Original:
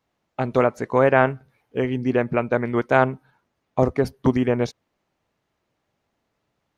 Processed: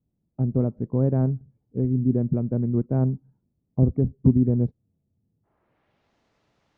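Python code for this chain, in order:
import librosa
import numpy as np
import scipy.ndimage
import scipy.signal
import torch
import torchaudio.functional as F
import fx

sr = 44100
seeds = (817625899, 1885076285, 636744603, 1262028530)

y = fx.filter_sweep_lowpass(x, sr, from_hz=190.0, to_hz=6000.0, start_s=4.82, end_s=6.17, q=0.99)
y = fx.spec_freeze(y, sr, seeds[0], at_s=4.81, hold_s=0.64)
y = F.gain(torch.from_numpy(y), 5.0).numpy()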